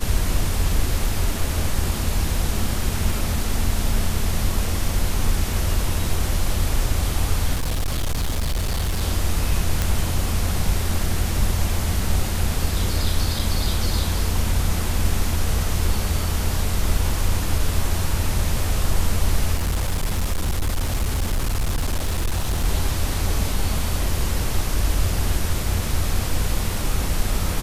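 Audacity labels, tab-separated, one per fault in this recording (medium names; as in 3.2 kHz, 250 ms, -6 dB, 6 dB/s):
7.530000	9.030000	clipped -18.5 dBFS
9.820000	9.820000	pop -6 dBFS
13.390000	13.390000	dropout 4.7 ms
19.540000	22.650000	clipped -17.5 dBFS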